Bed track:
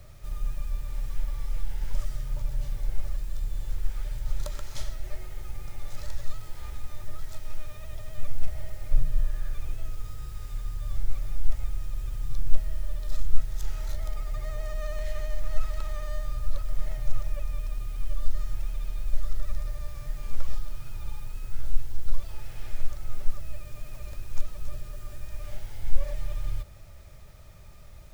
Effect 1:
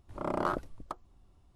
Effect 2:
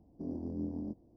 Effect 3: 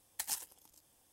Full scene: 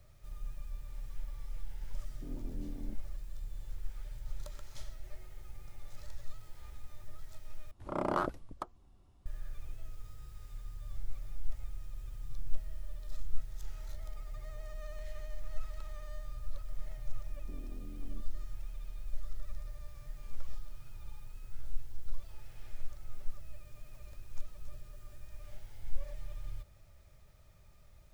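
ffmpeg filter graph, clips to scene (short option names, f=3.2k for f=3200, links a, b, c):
-filter_complex "[2:a]asplit=2[a][b];[0:a]volume=-11.5dB[c];[b]acompressor=threshold=-46dB:ratio=6:attack=3.2:release=140:knee=1:detection=peak[d];[c]asplit=2[e][f];[e]atrim=end=7.714[g];[1:a]atrim=end=1.55,asetpts=PTS-STARTPTS,volume=-1dB[h];[f]atrim=start=9.256[i];[a]atrim=end=1.16,asetpts=PTS-STARTPTS,volume=-8.5dB,afade=t=in:d=0.004:c=hsin,afade=t=out:st=1.156:d=0.004:c=hsin,adelay=2020[j];[d]atrim=end=1.16,asetpts=PTS-STARTPTS,volume=-3dB,afade=t=in:d=0.004:c=hsin,afade=t=out:st=1.156:d=0.004:c=hsin,adelay=17290[k];[g][h]acrossfade=d=0.004:c1=hsin:c2=hsin[l];[l][i]acrossfade=d=0.004:c1=hsin:c2=hsin[m];[m][j][k]amix=inputs=3:normalize=0"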